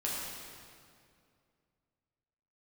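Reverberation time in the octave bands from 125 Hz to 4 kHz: 2.8 s, 2.7 s, 2.5 s, 2.2 s, 2.0 s, 1.8 s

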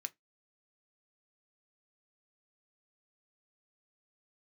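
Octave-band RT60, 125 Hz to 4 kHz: 0.20 s, 0.20 s, 0.15 s, 0.15 s, 0.15 s, 0.15 s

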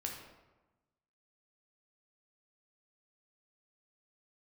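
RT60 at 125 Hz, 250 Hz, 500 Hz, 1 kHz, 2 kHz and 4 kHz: 1.4 s, 1.3 s, 1.1 s, 1.1 s, 0.90 s, 0.65 s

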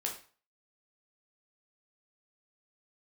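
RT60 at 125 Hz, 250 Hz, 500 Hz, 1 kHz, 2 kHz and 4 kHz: 0.40 s, 0.35 s, 0.40 s, 0.40 s, 0.40 s, 0.35 s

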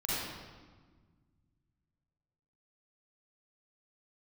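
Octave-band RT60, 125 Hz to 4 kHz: 3.0 s, 2.3 s, 1.5 s, 1.4 s, 1.2 s, 1.1 s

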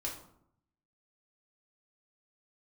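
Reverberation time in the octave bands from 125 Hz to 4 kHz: 1.1 s, 0.85 s, 0.70 s, 0.70 s, 0.50 s, 0.40 s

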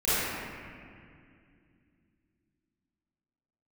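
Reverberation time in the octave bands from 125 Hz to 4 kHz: 3.6 s, 3.7 s, 2.5 s, 2.1 s, 2.3 s, 1.7 s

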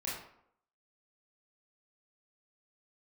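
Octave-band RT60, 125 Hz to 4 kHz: 0.60 s, 0.70 s, 0.70 s, 0.70 s, 0.55 s, 0.40 s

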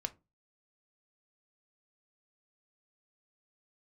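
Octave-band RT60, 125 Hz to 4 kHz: 0.40 s, 0.35 s, 0.30 s, 0.25 s, 0.20 s, 0.15 s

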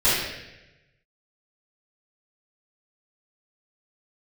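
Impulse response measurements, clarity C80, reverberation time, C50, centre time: 2.0 dB, 1.0 s, -1.5 dB, 86 ms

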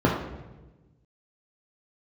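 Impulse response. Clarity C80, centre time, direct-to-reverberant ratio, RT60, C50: 6.5 dB, 44 ms, -3.0 dB, 1.2 s, 3.5 dB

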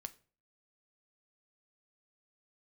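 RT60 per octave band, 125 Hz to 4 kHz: 0.50 s, 0.45 s, 0.45 s, 0.35 s, 0.35 s, 0.30 s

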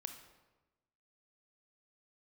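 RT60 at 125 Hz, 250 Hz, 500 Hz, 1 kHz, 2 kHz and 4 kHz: 1.3 s, 1.2 s, 1.2 s, 1.1 s, 0.95 s, 0.80 s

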